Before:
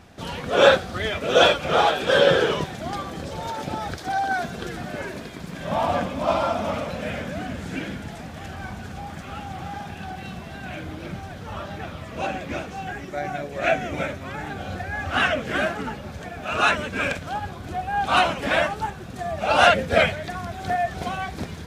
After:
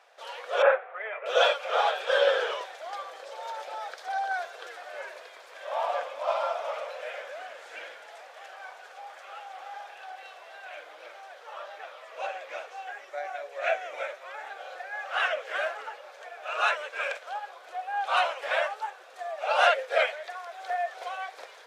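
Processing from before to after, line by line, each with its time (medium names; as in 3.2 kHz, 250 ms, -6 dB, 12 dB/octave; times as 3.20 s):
0.62–1.26 s: elliptic band-pass 380–2300 Hz
whole clip: elliptic high-pass 510 Hz, stop band 70 dB; treble shelf 6.5 kHz -8 dB; trim -5 dB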